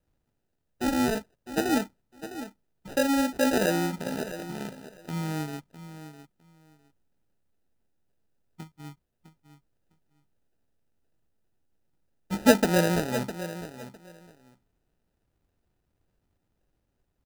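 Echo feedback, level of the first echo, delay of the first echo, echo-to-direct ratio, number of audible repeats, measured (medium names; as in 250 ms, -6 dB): 18%, -12.5 dB, 656 ms, -12.5 dB, 2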